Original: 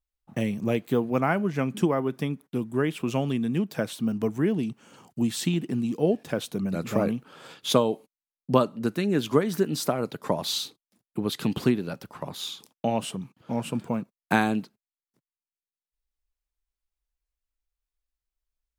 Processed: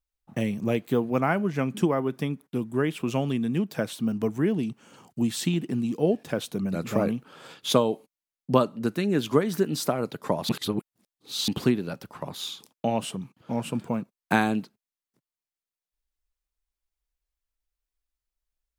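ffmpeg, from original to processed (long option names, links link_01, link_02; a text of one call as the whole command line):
ffmpeg -i in.wav -filter_complex "[0:a]asplit=3[link_01][link_02][link_03];[link_01]atrim=end=10.492[link_04];[link_02]atrim=start=10.488:end=11.482,asetpts=PTS-STARTPTS,areverse[link_05];[link_03]atrim=start=11.478[link_06];[link_04][link_05]acrossfade=duration=0.004:curve1=hsin:curve2=hsin[link_07];[link_07][link_06]acrossfade=duration=0.004:curve1=hsin:curve2=hsin" out.wav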